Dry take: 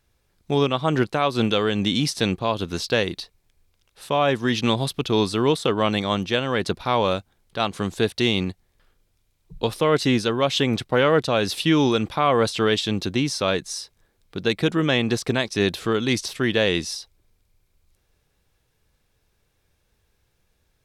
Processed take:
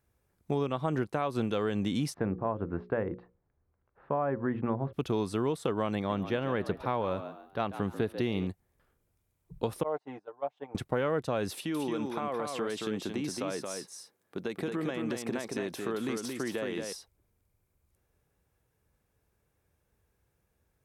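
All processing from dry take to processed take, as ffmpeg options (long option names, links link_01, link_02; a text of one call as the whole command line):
ffmpeg -i in.wav -filter_complex "[0:a]asettb=1/sr,asplit=3[link_01][link_02][link_03];[link_01]atrim=end=2.144[link_04];[link_02]atrim=start=2.14:end=4.93,asetpts=PTS-STARTPTS,afade=type=in:duration=0.004:curve=qsin,afade=type=out:start_time=2.786:duration=0.004:curve=qsin,lowpass=frequency=1700:width=0.5412,lowpass=frequency=1700:width=1.3066,bandreject=frequency=60:width_type=h:width=6,bandreject=frequency=120:width_type=h:width=6,bandreject=frequency=180:width_type=h:width=6,bandreject=frequency=240:width_type=h:width=6,bandreject=frequency=300:width_type=h:width=6,bandreject=frequency=360:width_type=h:width=6,bandreject=frequency=420:width_type=h:width=6,bandreject=frequency=480:width_type=h:width=6,bandreject=frequency=540:width_type=h:width=6[link_05];[link_03]atrim=start=4.926[link_06];[link_04][link_05]acrossfade=duration=0.004:curve1=hsin:curve2=qsin[link_07];[link_07][link_06]acrossfade=duration=0.004:curve1=qsin:curve2=hsin,asettb=1/sr,asplit=3[link_08][link_09][link_10];[link_08]atrim=end=5.954[link_11];[link_09]atrim=start=5.95:end=8.47,asetpts=PTS-STARTPTS,afade=type=in:duration=0.004:curve=qsin,afade=type=out:start_time=2.516:duration=0.004:curve=qsin,equalizer=frequency=7700:width_type=o:width=0.83:gain=-13,asplit=4[link_12][link_13][link_14][link_15];[link_13]adelay=141,afreqshift=70,volume=-14dB[link_16];[link_14]adelay=282,afreqshift=140,volume=-24.2dB[link_17];[link_15]adelay=423,afreqshift=210,volume=-34.3dB[link_18];[link_12][link_16][link_17][link_18]amix=inputs=4:normalize=0,atrim=end_sample=111132[link_19];[link_10]atrim=start=8.466[link_20];[link_11][link_19]acrossfade=duration=0.004:curve1=hsin:curve2=qsin[link_21];[link_21][link_20]acrossfade=duration=0.004:curve1=qsin:curve2=hsin,asettb=1/sr,asplit=3[link_22][link_23][link_24];[link_22]atrim=end=9.834[link_25];[link_23]atrim=start=9.83:end=10.75,asetpts=PTS-STARTPTS,afade=type=in:duration=0.004:curve=qsin,afade=type=out:start_time=0.916:duration=0.004:curve=qsin,agate=range=-19dB:threshold=-20dB:ratio=16:release=100:detection=peak,bandpass=frequency=780:width_type=q:width=3.4,aecho=1:1:6.7:0.64,atrim=end_sample=40572[link_26];[link_24]atrim=start=10.746[link_27];[link_25][link_26]acrossfade=duration=0.004:curve1=hsin:curve2=qsin[link_28];[link_28][link_27]acrossfade=duration=0.004:curve1=qsin:curve2=hsin,asettb=1/sr,asplit=3[link_29][link_30][link_31];[link_29]atrim=end=11.524[link_32];[link_30]atrim=start=11.52:end=16.93,asetpts=PTS-STARTPTS,afade=type=in:duration=0.004:curve=qsin,afade=type=out:start_time=5.406:duration=0.004:curve=qsin,highpass=200,acompressor=threshold=-24dB:ratio=6:attack=3.2:release=140:knee=1:detection=peak,aecho=1:1:224:0.596,atrim=end_sample=238581[link_33];[link_31]atrim=start=16.926[link_34];[link_32][link_33]acrossfade=duration=0.004:curve1=hsin:curve2=qsin[link_35];[link_35][link_34]acrossfade=duration=0.004:curve1=qsin:curve2=hsin,highpass=48,equalizer=frequency=4000:width=0.81:gain=-11.5,acompressor=threshold=-22dB:ratio=6,volume=-4dB" out.wav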